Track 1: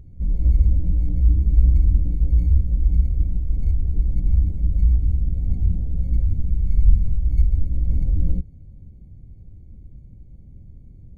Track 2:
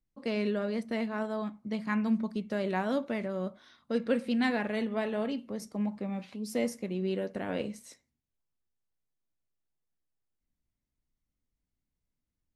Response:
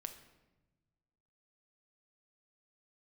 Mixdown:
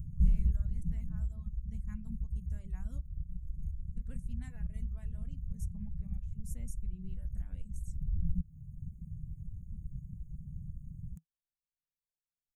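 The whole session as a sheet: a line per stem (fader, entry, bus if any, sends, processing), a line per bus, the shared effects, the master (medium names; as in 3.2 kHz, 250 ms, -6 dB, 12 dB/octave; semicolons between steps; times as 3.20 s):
+2.0 dB, 0.00 s, no send, compression 12:1, threshold -19 dBFS, peak gain reduction 13 dB; auto duck -13 dB, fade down 1.55 s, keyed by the second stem
-14.5 dB, 0.00 s, muted 3.08–3.97 s, send -8.5 dB, none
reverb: on, RT60 1.1 s, pre-delay 6 ms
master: reverb removal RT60 1.5 s; FFT filter 110 Hz 0 dB, 160 Hz +8 dB, 270 Hz -12 dB, 470 Hz -21 dB, 1.7 kHz -13 dB, 3.1 kHz -15 dB, 4.6 kHz -20 dB, 6.7 kHz +7 dB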